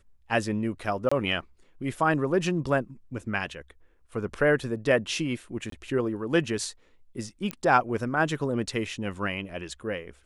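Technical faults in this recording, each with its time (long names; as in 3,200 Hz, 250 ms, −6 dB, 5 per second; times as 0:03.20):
0:01.09–0:01.11: drop-out 25 ms
0:05.70–0:05.72: drop-out 23 ms
0:07.51: click −16 dBFS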